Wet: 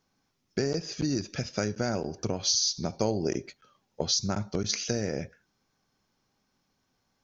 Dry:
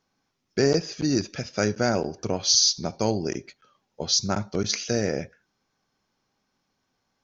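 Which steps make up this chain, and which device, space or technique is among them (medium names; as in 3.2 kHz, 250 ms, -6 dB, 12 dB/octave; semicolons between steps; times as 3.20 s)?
ASMR close-microphone chain (bass shelf 230 Hz +5 dB; compression 5:1, threshold -24 dBFS, peak gain reduction 9.5 dB; treble shelf 6.3 kHz +5 dB); 3.01–4.02 s: dynamic bell 520 Hz, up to +5 dB, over -42 dBFS, Q 0.95; trim -1.5 dB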